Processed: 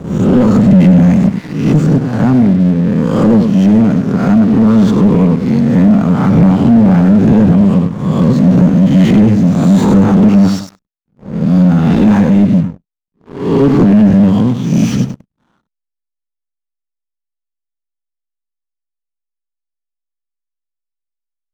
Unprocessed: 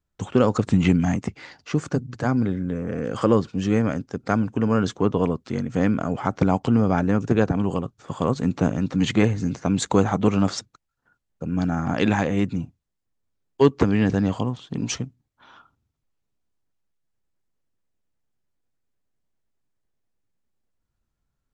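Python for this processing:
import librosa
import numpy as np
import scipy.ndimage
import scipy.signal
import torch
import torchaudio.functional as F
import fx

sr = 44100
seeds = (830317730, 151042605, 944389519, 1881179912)

p1 = fx.spec_swells(x, sr, rise_s=0.74)
p2 = p1 + fx.echo_feedback(p1, sr, ms=99, feedback_pct=28, wet_db=-11.5, dry=0)
p3 = fx.backlash(p2, sr, play_db=-41.5)
p4 = fx.peak_eq(p3, sr, hz=190.0, db=14.0, octaves=1.2)
p5 = fx.leveller(p4, sr, passes=3)
p6 = fx.slew_limit(p5, sr, full_power_hz=440.0)
y = F.gain(torch.from_numpy(p6), -5.5).numpy()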